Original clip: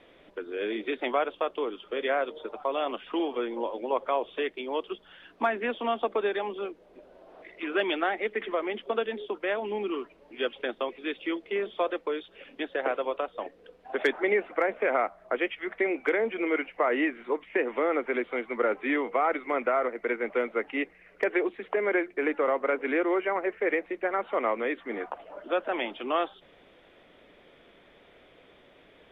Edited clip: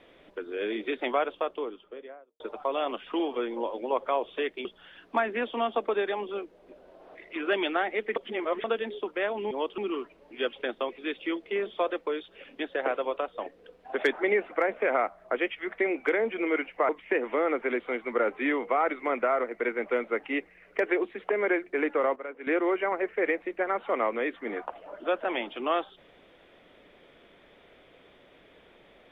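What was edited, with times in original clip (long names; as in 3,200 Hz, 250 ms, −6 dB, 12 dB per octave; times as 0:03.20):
0:01.23–0:02.40: fade out and dull
0:04.65–0:04.92: move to 0:09.78
0:08.43–0:08.91: reverse
0:16.89–0:17.33: remove
0:22.60–0:22.91: clip gain −11.5 dB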